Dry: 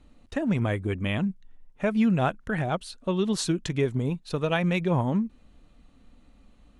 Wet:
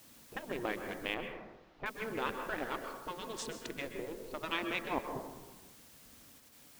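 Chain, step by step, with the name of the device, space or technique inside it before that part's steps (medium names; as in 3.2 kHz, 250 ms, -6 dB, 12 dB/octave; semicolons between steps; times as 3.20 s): local Wiener filter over 25 samples; worn cassette (low-pass 6 kHz; wow and flutter; level dips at 4.99/6.38 s, 172 ms -18 dB; white noise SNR 28 dB); spectral gate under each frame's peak -10 dB weak; 1.14–1.86 s: distance through air 290 m; plate-style reverb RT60 1.1 s, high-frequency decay 0.35×, pre-delay 115 ms, DRR 5.5 dB; trim -3 dB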